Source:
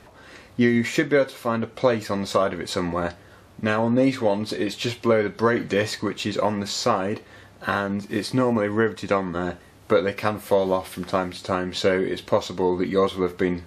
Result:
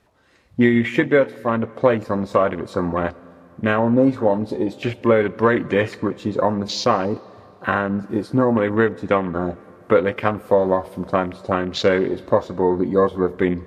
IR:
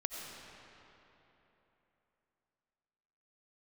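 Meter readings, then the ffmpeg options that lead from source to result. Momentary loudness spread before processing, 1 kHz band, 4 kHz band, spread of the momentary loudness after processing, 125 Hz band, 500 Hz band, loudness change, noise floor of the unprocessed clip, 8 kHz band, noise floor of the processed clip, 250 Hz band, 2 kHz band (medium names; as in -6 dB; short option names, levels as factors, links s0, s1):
6 LU, +3.5 dB, -1.5 dB, 8 LU, +3.5 dB, +3.5 dB, +3.5 dB, -49 dBFS, -5.0 dB, -48 dBFS, +3.5 dB, +3.0 dB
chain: -filter_complex "[0:a]afwtdn=0.0282,asplit=2[s0][s1];[1:a]atrim=start_sample=2205[s2];[s1][s2]afir=irnorm=-1:irlink=0,volume=0.106[s3];[s0][s3]amix=inputs=2:normalize=0,volume=1.41"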